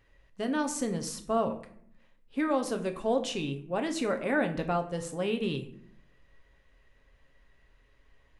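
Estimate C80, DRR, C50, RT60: 15.5 dB, 5.0 dB, 12.0 dB, 0.65 s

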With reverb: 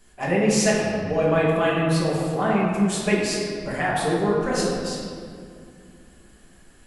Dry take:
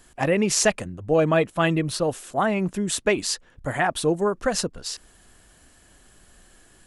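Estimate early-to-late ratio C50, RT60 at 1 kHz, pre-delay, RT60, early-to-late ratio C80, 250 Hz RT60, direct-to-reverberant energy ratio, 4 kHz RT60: -0.5 dB, 2.1 s, 5 ms, 2.3 s, 1.0 dB, 3.4 s, -7.0 dB, 1.3 s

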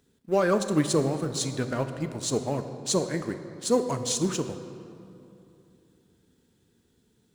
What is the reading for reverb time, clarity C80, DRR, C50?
2.8 s, 10.5 dB, 8.5 dB, 9.5 dB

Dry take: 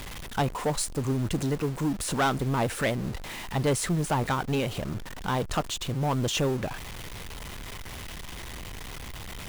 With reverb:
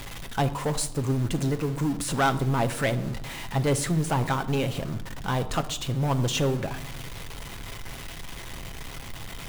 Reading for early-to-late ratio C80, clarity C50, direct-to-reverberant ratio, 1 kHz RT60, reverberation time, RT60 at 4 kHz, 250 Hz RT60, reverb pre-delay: 18.0 dB, 15.0 dB, 8.0 dB, 0.80 s, 0.85 s, 0.55 s, 1.6 s, 6 ms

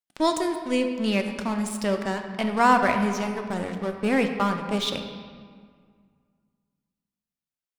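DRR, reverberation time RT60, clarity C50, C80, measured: 5.0 dB, 1.9 s, 6.5 dB, 8.0 dB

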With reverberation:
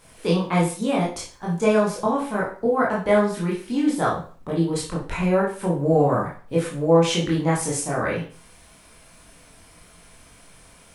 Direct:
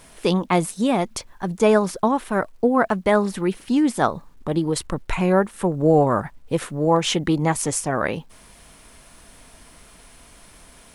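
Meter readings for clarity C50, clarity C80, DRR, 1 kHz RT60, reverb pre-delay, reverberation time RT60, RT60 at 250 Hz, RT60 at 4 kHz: 5.5 dB, 11.0 dB, -5.0 dB, 0.40 s, 18 ms, 0.40 s, 0.45 s, 0.40 s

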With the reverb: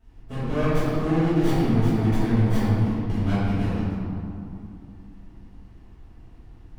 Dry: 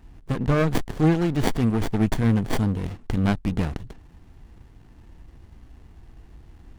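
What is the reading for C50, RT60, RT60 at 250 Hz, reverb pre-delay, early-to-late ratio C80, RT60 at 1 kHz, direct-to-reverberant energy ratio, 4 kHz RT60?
-5.0 dB, 2.7 s, 3.7 s, 4 ms, -2.0 dB, 2.7 s, -15.0 dB, 1.3 s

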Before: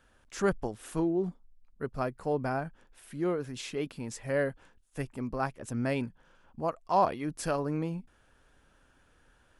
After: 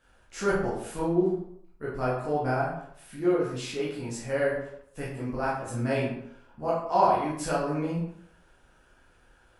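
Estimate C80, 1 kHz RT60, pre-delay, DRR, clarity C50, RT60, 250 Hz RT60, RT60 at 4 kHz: 5.5 dB, 0.70 s, 12 ms, -7.5 dB, 2.0 dB, 0.70 s, 0.65 s, 0.45 s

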